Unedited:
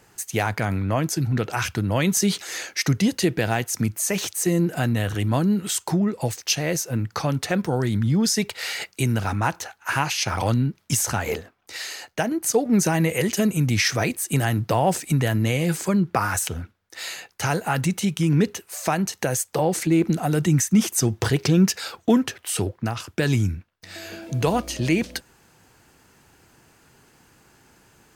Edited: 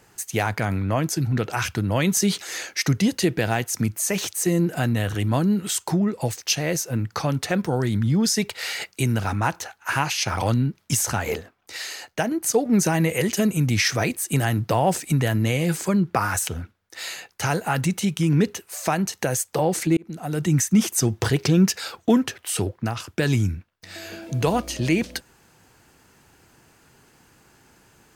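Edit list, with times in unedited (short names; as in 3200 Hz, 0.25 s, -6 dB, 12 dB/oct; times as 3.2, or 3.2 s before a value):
19.97–20.59 fade in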